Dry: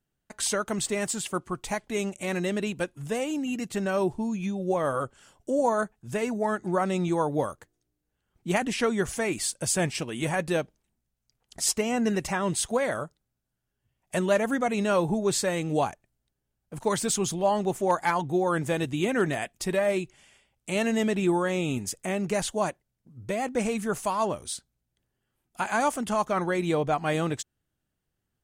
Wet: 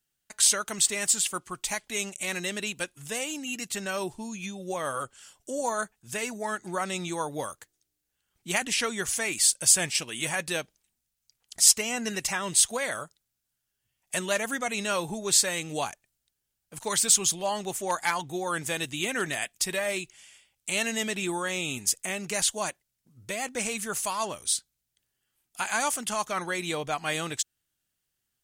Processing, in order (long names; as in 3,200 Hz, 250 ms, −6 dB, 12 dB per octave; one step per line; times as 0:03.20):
tilt shelving filter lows −9 dB, about 1,500 Hz